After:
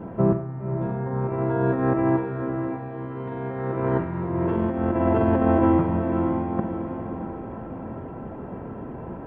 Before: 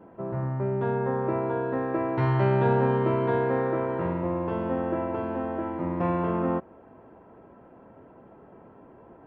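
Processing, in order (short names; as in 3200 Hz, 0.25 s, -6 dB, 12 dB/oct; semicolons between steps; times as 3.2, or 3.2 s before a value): tone controls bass +9 dB, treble -5 dB; negative-ratio compressor -28 dBFS, ratio -0.5; on a send: diffused feedback echo 0.573 s, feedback 42%, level -6.5 dB; on the sum: Schroeder reverb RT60 0.62 s, combs from 33 ms, DRR 8 dB; gain +4 dB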